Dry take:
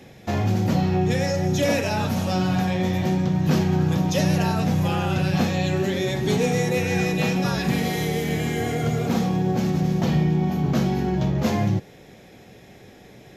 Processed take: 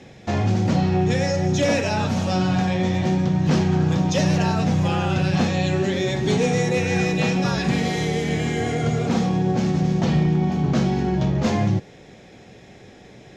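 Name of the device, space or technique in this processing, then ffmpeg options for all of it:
synthesiser wavefolder: -af "aeval=exprs='0.224*(abs(mod(val(0)/0.224+3,4)-2)-1)':c=same,lowpass=f=8.3k:w=0.5412,lowpass=f=8.3k:w=1.3066,volume=1.5dB"

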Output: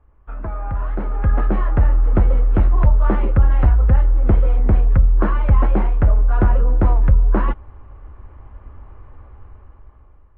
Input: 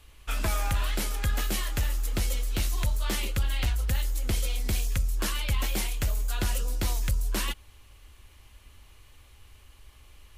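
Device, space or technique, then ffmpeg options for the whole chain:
action camera in a waterproof case: -af "lowpass=f=1.3k:w=0.5412,lowpass=f=1.3k:w=1.3066,dynaudnorm=f=330:g=7:m=15dB" -ar 32000 -c:a aac -b:a 48k

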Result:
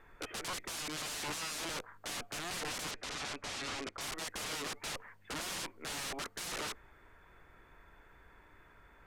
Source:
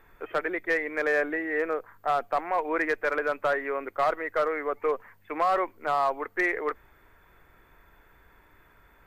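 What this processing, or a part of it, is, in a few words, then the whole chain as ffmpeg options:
overflowing digital effects unit: -filter_complex "[0:a]aeval=exprs='(mod(39.8*val(0)+1,2)-1)/39.8':c=same,lowpass=9.8k,asettb=1/sr,asplit=3[a][b][c];[a]atrim=end=2.914[d];[b]atrim=start=2.91:end=4.01,asetpts=PTS-STARTPTS,afade=t=in:d=0.004:c=qsin,afade=t=out:st=1.096:d=0.004:c=qsin,lowpass=7k[e];[c]atrim=start=4.006[f];[d][e]acrossfade=d=0.004:c1=hsin:c2=qsin[g];[g][f]acrossfade=d=0.004:c1=qsin:c2=hsin,volume=-2dB"

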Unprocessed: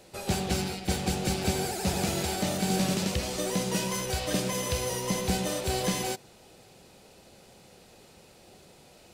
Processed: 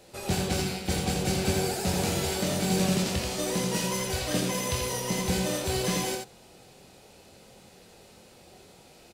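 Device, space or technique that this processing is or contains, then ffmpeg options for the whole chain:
slapback doubling: -filter_complex "[0:a]asplit=3[a][b][c];[b]adelay=23,volume=-5dB[d];[c]adelay=84,volume=-4dB[e];[a][d][e]amix=inputs=3:normalize=0,volume=-1dB"

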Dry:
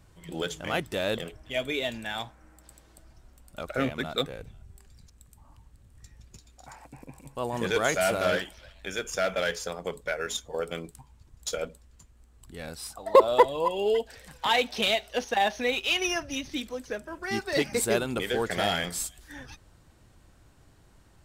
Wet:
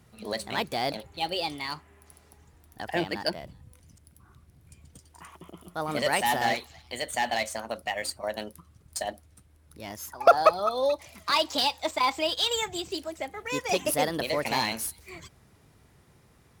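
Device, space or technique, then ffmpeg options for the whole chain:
nightcore: -af "asetrate=56448,aresample=44100,highpass=65"

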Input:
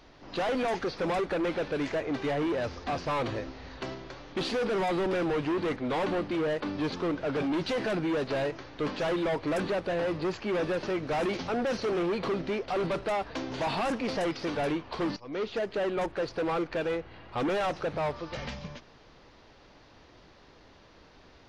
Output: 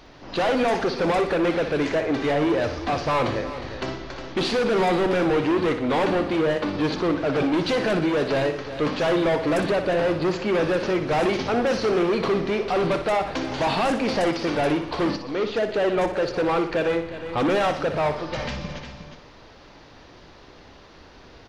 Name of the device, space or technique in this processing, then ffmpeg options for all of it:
ducked delay: -filter_complex "[0:a]asplit=3[a][b][c];[b]adelay=360,volume=-8.5dB[d];[c]apad=whole_len=963511[e];[d][e]sidechaincompress=threshold=-37dB:ratio=8:attack=16:release=554[f];[a][f]amix=inputs=2:normalize=0,aecho=1:1:60|120|180|240|300:0.335|0.164|0.0804|0.0394|0.0193,volume=7dB"

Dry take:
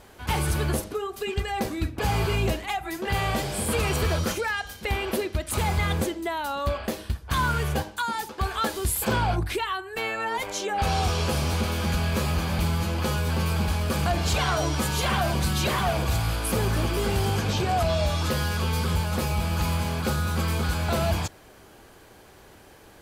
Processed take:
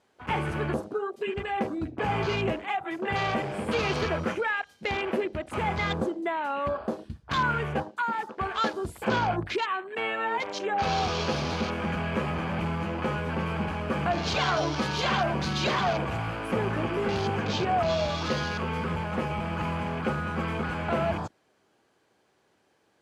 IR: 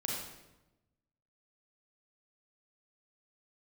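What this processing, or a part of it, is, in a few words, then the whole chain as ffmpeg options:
over-cleaned archive recording: -af "highpass=150,lowpass=7.9k,afwtdn=0.0158"

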